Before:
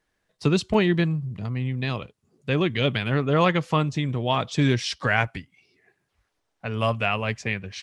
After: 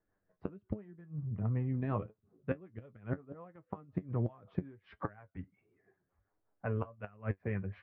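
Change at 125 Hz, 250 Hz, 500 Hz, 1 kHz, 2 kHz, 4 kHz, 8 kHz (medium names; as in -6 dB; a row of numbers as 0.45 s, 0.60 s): -12.0 dB, -15.0 dB, -16.5 dB, -20.0 dB, -23.5 dB, under -40 dB, under -40 dB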